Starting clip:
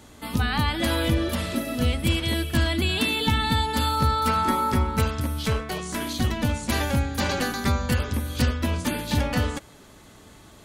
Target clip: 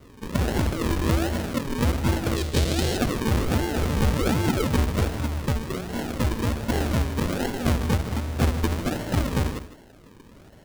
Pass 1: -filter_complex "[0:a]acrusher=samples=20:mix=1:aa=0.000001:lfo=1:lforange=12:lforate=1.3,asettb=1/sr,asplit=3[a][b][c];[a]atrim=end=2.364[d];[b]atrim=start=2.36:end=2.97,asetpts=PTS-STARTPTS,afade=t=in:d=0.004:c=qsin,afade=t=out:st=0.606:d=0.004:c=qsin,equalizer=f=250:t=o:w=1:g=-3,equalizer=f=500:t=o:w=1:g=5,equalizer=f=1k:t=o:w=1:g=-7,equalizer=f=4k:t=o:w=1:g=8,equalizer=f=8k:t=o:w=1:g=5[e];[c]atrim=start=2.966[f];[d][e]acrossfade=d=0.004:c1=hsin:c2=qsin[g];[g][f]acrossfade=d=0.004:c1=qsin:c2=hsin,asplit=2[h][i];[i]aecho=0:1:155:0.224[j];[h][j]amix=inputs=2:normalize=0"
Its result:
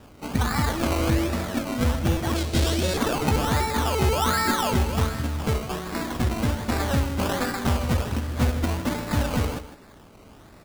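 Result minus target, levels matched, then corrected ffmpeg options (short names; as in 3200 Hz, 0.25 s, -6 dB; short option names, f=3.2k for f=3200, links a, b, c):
decimation with a swept rate: distortion -4 dB
-filter_complex "[0:a]acrusher=samples=51:mix=1:aa=0.000001:lfo=1:lforange=30.6:lforate=1.3,asettb=1/sr,asplit=3[a][b][c];[a]atrim=end=2.364[d];[b]atrim=start=2.36:end=2.97,asetpts=PTS-STARTPTS,afade=t=in:d=0.004:c=qsin,afade=t=out:st=0.606:d=0.004:c=qsin,equalizer=f=250:t=o:w=1:g=-3,equalizer=f=500:t=o:w=1:g=5,equalizer=f=1k:t=o:w=1:g=-7,equalizer=f=4k:t=o:w=1:g=8,equalizer=f=8k:t=o:w=1:g=5[e];[c]atrim=start=2.966[f];[d][e]acrossfade=d=0.004:c1=hsin:c2=qsin[g];[g][f]acrossfade=d=0.004:c1=qsin:c2=hsin,asplit=2[h][i];[i]aecho=0:1:155:0.224[j];[h][j]amix=inputs=2:normalize=0"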